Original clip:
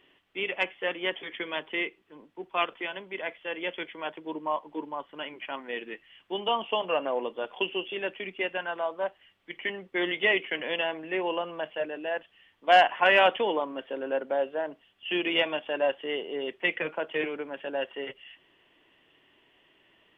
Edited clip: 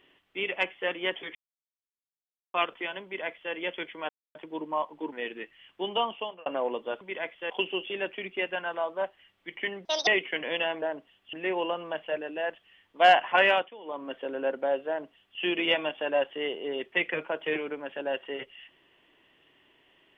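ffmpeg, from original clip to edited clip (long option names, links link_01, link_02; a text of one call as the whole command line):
ffmpeg -i in.wav -filter_complex "[0:a]asplit=14[link_01][link_02][link_03][link_04][link_05][link_06][link_07][link_08][link_09][link_10][link_11][link_12][link_13][link_14];[link_01]atrim=end=1.35,asetpts=PTS-STARTPTS,afade=type=out:start_time=1.346:duration=0.004:curve=hsin[link_15];[link_02]atrim=start=1.35:end=2.54,asetpts=PTS-STARTPTS,volume=0[link_16];[link_03]atrim=start=2.54:end=4.09,asetpts=PTS-STARTPTS,afade=type=in:duration=0.004:curve=hsin,afade=type=out:start_time=1.546:duration=0.004:curve=hsin,apad=pad_dur=0.26[link_17];[link_04]atrim=start=4.09:end=4.862,asetpts=PTS-STARTPTS,afade=type=in:duration=0.004:curve=hsin[link_18];[link_05]atrim=start=5.628:end=6.97,asetpts=PTS-STARTPTS,afade=type=out:start_time=0.862:duration=0.48[link_19];[link_06]atrim=start=6.97:end=7.522,asetpts=PTS-STARTPTS,afade=type=in:duration=0.004:curve=hsin[link_20];[link_07]atrim=start=3.038:end=3.532[link_21];[link_08]atrim=start=7.518:end=9.874[link_22];[link_09]atrim=start=9.87:end=10.26,asetpts=PTS-STARTPTS,asetrate=77616,aresample=44100,atrim=end_sample=9772,asetpts=PTS-STARTPTS[link_23];[link_10]atrim=start=10.256:end=11.012[link_24];[link_11]atrim=start=14.558:end=15.072[link_25];[link_12]atrim=start=11.008:end=13.37,asetpts=PTS-STARTPTS,afade=type=out:start_time=2.002:duration=0.36:curve=qsin:silence=0.112202[link_26];[link_13]atrim=start=13.37:end=13.51,asetpts=PTS-STARTPTS,volume=-19dB[link_27];[link_14]atrim=start=13.51,asetpts=PTS-STARTPTS,afade=type=in:duration=0.36:curve=qsin:silence=0.112202[link_28];[link_15][link_16][link_17][link_18]concat=n=4:v=0:a=1[link_29];[link_19][link_20]concat=n=2:v=0:a=1[link_30];[link_29][link_30]acrossfade=duration=0.004:curve1=hsin:curve2=hsin[link_31];[link_31][link_21]acrossfade=duration=0.004:curve1=hsin:curve2=hsin[link_32];[link_32][link_22]acrossfade=duration=0.004:curve1=hsin:curve2=hsin[link_33];[link_33][link_23]acrossfade=duration=0.004:curve1=hsin:curve2=hsin[link_34];[link_34][link_24]acrossfade=duration=0.004:curve1=hsin:curve2=hsin[link_35];[link_35][link_25]acrossfade=duration=0.004:curve1=hsin:curve2=hsin[link_36];[link_26][link_27][link_28]concat=n=3:v=0:a=1[link_37];[link_36][link_37]acrossfade=duration=0.004:curve1=hsin:curve2=hsin" out.wav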